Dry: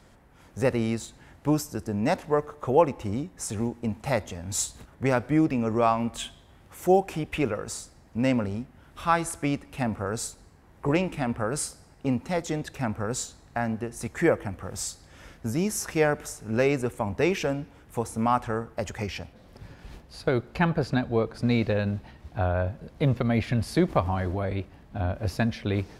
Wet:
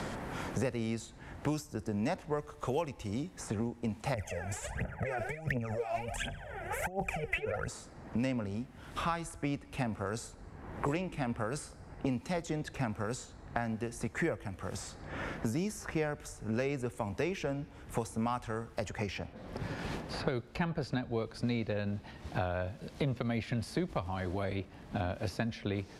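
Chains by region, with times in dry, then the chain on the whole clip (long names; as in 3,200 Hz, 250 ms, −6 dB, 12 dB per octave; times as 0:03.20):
0:04.14–0:07.68: compressor whose output falls as the input rises −31 dBFS + phaser with its sweep stopped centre 1,100 Hz, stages 6 + phase shifter 1.4 Hz, delay 3.1 ms, feedback 79%
whole clip: low-pass filter 11,000 Hz 12 dB per octave; multiband upward and downward compressor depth 100%; level −8.5 dB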